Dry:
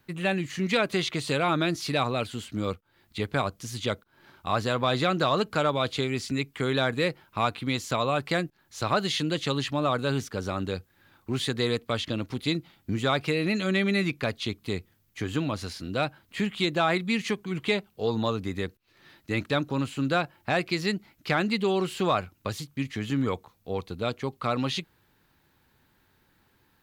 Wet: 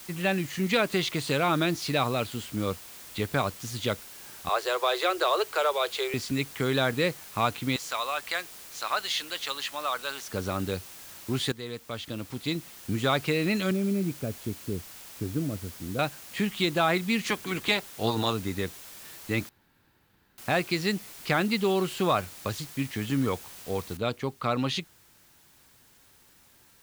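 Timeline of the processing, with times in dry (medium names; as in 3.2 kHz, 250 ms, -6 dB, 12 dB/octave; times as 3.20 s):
4.49–6.14 s: steep high-pass 350 Hz 96 dB/octave
7.76–10.28 s: high-pass 920 Hz
11.52–13.06 s: fade in, from -14 dB
13.71–15.99 s: boxcar filter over 46 samples
17.25–18.32 s: spectral peaks clipped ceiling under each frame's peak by 14 dB
19.49–20.38 s: room tone
23.97 s: noise floor step -46 dB -60 dB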